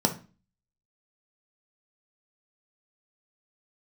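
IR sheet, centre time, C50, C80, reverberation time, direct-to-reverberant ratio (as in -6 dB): 9 ms, 12.5 dB, 19.5 dB, 0.35 s, 3.5 dB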